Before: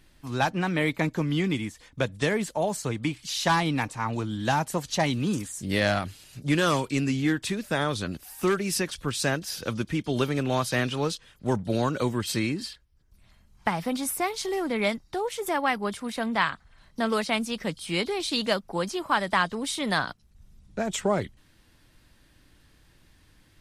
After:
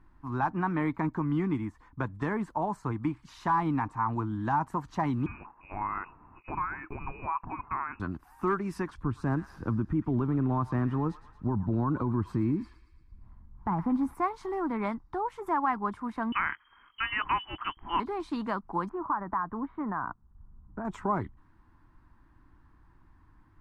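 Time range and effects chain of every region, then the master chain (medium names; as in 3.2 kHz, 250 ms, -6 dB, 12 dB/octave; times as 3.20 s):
5.26–8.00 s: tilt shelf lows -8.5 dB, about 920 Hz + compression 10:1, threshold -26 dBFS + frequency inversion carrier 2.7 kHz
9.03–14.15 s: tilt shelf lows +7 dB, about 680 Hz + feedback echo behind a high-pass 114 ms, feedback 55%, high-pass 1.6 kHz, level -11 dB
16.32–18.00 s: frequency inversion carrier 3.2 kHz + peaking EQ 2.2 kHz +8 dB 1.8 oct
18.89–20.85 s: low-pass 1.7 kHz 24 dB/octave + compression 10:1, threshold -26 dBFS
whole clip: FFT filter 320 Hz 0 dB, 540 Hz -15 dB, 1 kHz +6 dB, 3.2 kHz -24 dB, 6.9 kHz -26 dB, 11 kHz -28 dB; peak limiter -19 dBFS; peaking EQ 170 Hz -5 dB 1.3 oct; trim +1.5 dB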